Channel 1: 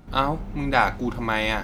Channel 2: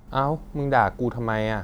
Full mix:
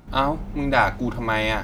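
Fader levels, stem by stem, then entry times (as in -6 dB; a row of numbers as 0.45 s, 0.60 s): 0.0 dB, -4.0 dB; 0.00 s, 0.00 s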